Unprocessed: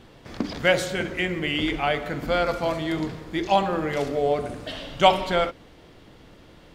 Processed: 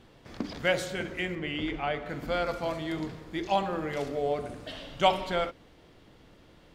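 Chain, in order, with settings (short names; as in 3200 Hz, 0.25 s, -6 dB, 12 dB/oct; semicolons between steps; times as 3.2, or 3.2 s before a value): 1.35–2.09 LPF 2900 Hz 6 dB/oct; gain -6.5 dB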